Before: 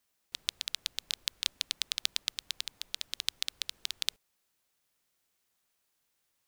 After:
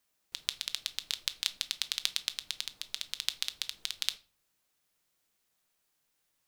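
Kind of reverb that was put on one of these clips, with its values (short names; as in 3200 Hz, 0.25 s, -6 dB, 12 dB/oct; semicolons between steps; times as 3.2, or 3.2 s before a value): shoebox room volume 280 m³, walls furnished, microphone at 0.53 m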